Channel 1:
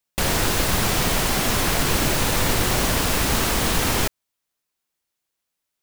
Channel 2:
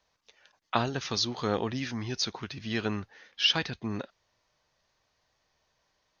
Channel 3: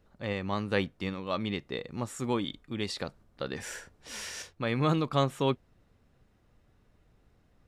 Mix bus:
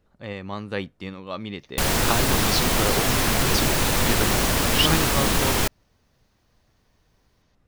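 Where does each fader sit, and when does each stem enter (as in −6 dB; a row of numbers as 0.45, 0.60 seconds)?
−0.5, +2.5, −0.5 decibels; 1.60, 1.35, 0.00 seconds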